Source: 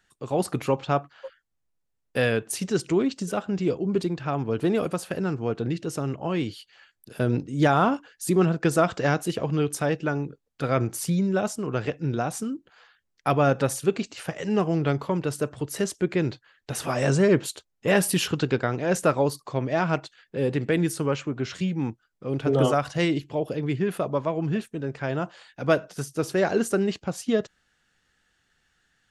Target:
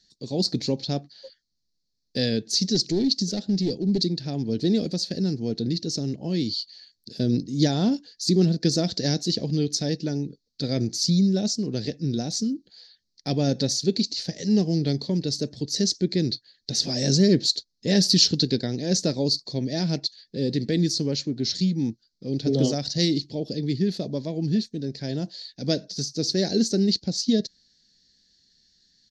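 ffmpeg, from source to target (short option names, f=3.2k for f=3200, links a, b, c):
-filter_complex "[0:a]asplit=3[a][b][c];[a]afade=t=out:st=2.74:d=0.02[d];[b]aeval=exprs='clip(val(0),-1,0.0794)':c=same,afade=t=in:st=2.74:d=0.02,afade=t=out:st=4.02:d=0.02[e];[c]afade=t=in:st=4.02:d=0.02[f];[d][e][f]amix=inputs=3:normalize=0,crystalizer=i=2.5:c=0,firequalizer=gain_entry='entry(130,0);entry(210,7);entry(350,0);entry(770,-11);entry(1200,-26);entry(1800,-8);entry(2800,-12);entry(4300,15);entry(6100,3);entry(9400,-28)':delay=0.05:min_phase=1,volume=-1dB"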